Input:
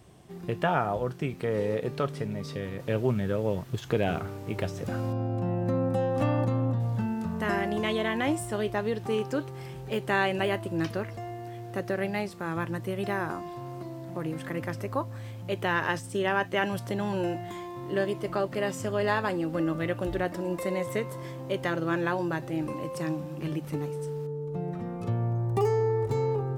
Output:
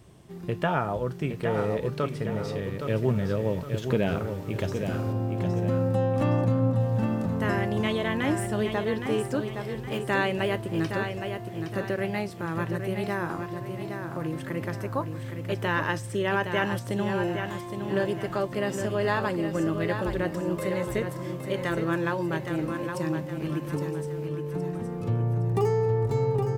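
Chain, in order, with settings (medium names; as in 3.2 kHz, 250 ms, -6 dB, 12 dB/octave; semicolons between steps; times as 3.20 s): bass shelf 210 Hz +3 dB; band-stop 740 Hz, Q 12; on a send: feedback delay 816 ms, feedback 40%, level -7 dB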